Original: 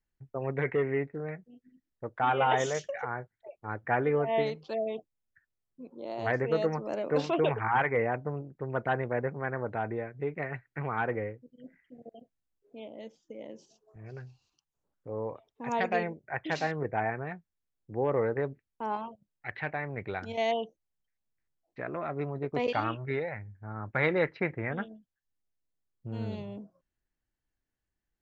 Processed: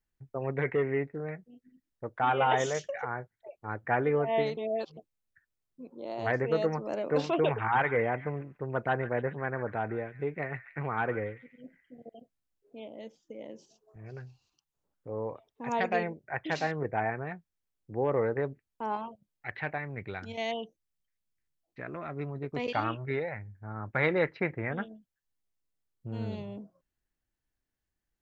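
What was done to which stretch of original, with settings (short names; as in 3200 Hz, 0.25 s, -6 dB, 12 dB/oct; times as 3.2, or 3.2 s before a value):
4.57–4.97 reverse
7.34–12.15 delay with a stepping band-pass 0.14 s, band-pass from 1800 Hz, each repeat 0.7 oct, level -10.5 dB
19.78–22.75 bell 670 Hz -6 dB 1.9 oct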